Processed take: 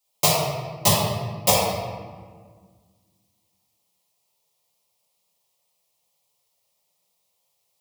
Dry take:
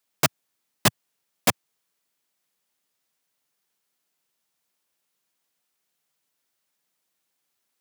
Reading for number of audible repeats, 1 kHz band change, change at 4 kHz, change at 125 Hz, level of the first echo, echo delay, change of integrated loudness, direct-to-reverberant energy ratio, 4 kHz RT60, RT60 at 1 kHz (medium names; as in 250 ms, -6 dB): no echo, +6.5 dB, +5.5 dB, +7.5 dB, no echo, no echo, +3.5 dB, -8.5 dB, 0.95 s, 1.6 s